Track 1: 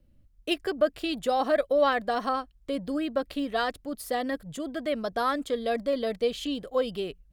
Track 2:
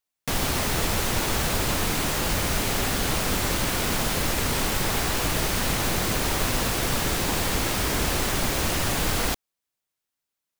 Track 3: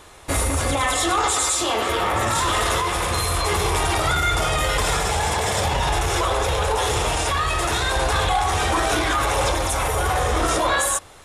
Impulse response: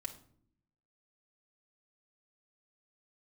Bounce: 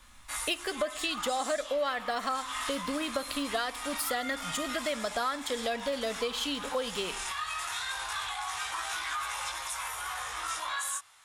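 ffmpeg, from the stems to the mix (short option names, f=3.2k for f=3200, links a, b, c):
-filter_complex "[0:a]volume=2.5dB,asplit=2[a][b];[b]volume=-4dB[c];[2:a]lowshelf=f=700:t=q:w=1.5:g=-11.5,flanger=delay=17:depth=4.9:speed=0.21,volume=-12.5dB[d];[3:a]atrim=start_sample=2205[e];[c][e]afir=irnorm=-1:irlink=0[f];[a][d][f]amix=inputs=3:normalize=0,tiltshelf=f=850:g=-6,acompressor=threshold=-30dB:ratio=4"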